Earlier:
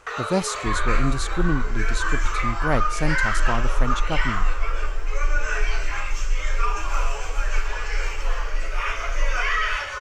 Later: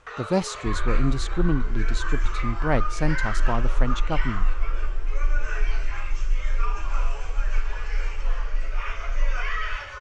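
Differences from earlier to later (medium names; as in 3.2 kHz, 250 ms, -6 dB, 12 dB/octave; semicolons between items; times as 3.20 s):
first sound -6.5 dB; master: add distance through air 69 m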